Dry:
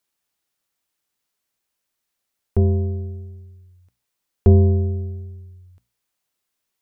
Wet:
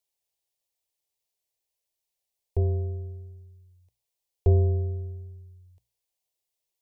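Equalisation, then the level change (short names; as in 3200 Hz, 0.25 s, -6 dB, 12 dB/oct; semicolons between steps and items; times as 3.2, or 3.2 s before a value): fixed phaser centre 570 Hz, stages 4; -5.0 dB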